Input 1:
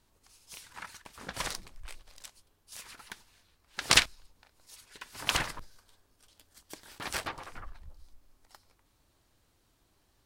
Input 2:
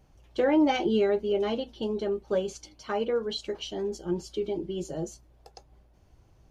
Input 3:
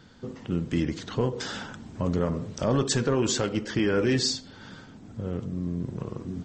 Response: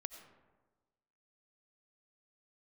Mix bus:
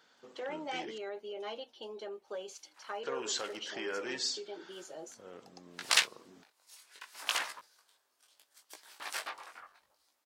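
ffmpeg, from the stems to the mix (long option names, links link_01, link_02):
-filter_complex "[0:a]flanger=delay=16:depth=6.3:speed=0.73,adelay=2000,volume=0dB[link_01];[1:a]alimiter=limit=-22dB:level=0:latency=1:release=28,volume=-5.5dB,asplit=2[link_02][link_03];[2:a]volume=-7.5dB,asplit=3[link_04][link_05][link_06];[link_04]atrim=end=0.98,asetpts=PTS-STARTPTS,afade=type=out:start_time=0.976:duration=0.004:curve=hsin[link_07];[link_05]atrim=start=0.98:end=3.03,asetpts=PTS-STARTPTS,volume=0[link_08];[link_06]atrim=start=3.03,asetpts=PTS-STARTPTS,afade=type=in:duration=0.004:curve=hsin[link_09];[link_07][link_08][link_09]concat=n=3:v=0:a=1[link_10];[link_03]apad=whole_len=540463[link_11];[link_01][link_11]sidechaincompress=threshold=-53dB:ratio=6:attack=7.1:release=608[link_12];[link_12][link_02][link_10]amix=inputs=3:normalize=0,highpass=620"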